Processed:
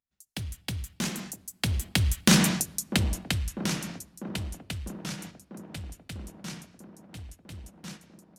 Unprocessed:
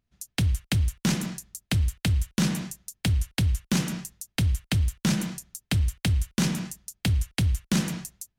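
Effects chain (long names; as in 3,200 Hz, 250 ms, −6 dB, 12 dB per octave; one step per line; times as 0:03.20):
source passing by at 0:02.42, 16 m/s, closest 3.5 metres
noise gate −53 dBFS, range −8 dB
low-shelf EQ 290 Hz −8 dB
in parallel at 0 dB: downward compressor, threshold −39 dBFS, peak gain reduction 13 dB
on the sum: delay with a band-pass on its return 647 ms, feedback 71%, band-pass 440 Hz, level −9 dB
on a send at −23.5 dB: convolution reverb RT60 1.9 s, pre-delay 4 ms
on the sum: level +8 dB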